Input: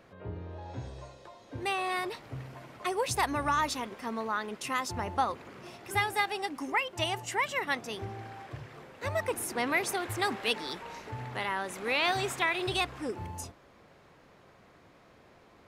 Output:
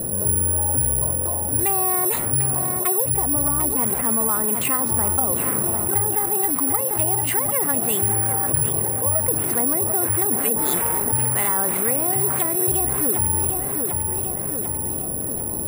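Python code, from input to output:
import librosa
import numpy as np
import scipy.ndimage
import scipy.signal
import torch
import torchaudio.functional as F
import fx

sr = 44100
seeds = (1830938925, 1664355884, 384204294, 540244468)

y = fx.env_lowpass(x, sr, base_hz=440.0, full_db=-29.5)
y = fx.spec_erase(y, sr, start_s=8.7, length_s=0.41, low_hz=1200.0, high_hz=10000.0)
y = fx.env_lowpass_down(y, sr, base_hz=500.0, full_db=-25.5)
y = fx.bass_treble(y, sr, bass_db=4, treble_db=2)
y = fx.rider(y, sr, range_db=10, speed_s=0.5)
y = fx.air_absorb(y, sr, metres=50.0)
y = fx.echo_feedback(y, sr, ms=746, feedback_pct=39, wet_db=-12.0)
y = (np.kron(scipy.signal.resample_poly(y, 1, 4), np.eye(4)[0]) * 4)[:len(y)]
y = fx.env_flatten(y, sr, amount_pct=70)
y = F.gain(torch.from_numpy(y), 3.0).numpy()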